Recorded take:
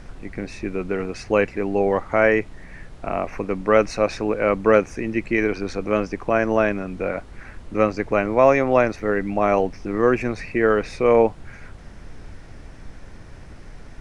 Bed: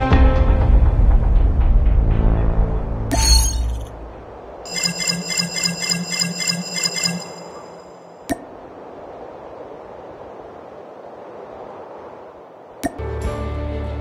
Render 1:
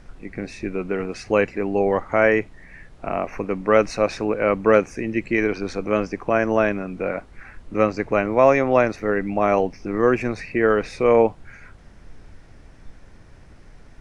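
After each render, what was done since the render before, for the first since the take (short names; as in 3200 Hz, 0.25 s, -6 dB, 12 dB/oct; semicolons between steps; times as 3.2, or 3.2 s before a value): noise print and reduce 6 dB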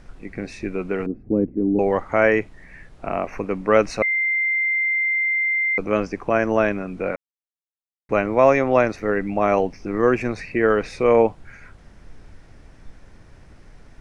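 1.06–1.79 synth low-pass 280 Hz, resonance Q 2.9; 4.02–5.78 bleep 2090 Hz -18 dBFS; 7.16–8.09 mute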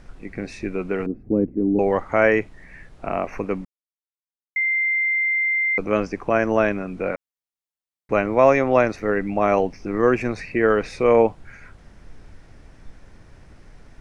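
3.65–4.56 mute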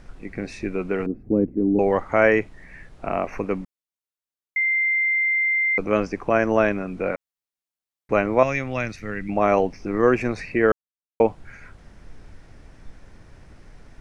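8.43–9.29 EQ curve 150 Hz 0 dB, 390 Hz -13 dB, 940 Hz -13 dB, 2400 Hz 0 dB; 10.72–11.2 mute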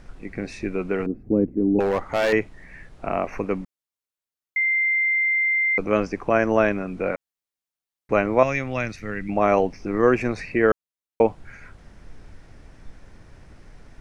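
1.8–2.33 hard clip -17 dBFS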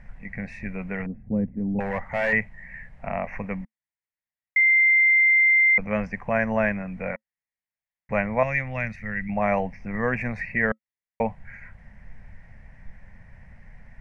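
EQ curve 220 Hz 0 dB, 330 Hz -22 dB, 540 Hz -5 dB, 930 Hz -2 dB, 1300 Hz -10 dB, 1900 Hz +7 dB, 3500 Hz -15 dB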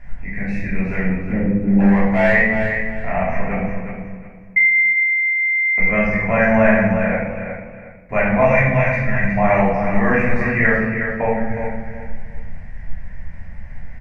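on a send: feedback echo 0.363 s, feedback 28%, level -7.5 dB; on the sum: shoebox room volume 430 m³, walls mixed, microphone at 3.1 m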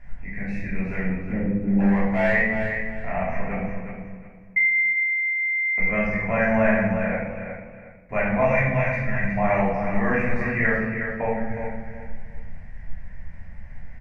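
gain -6 dB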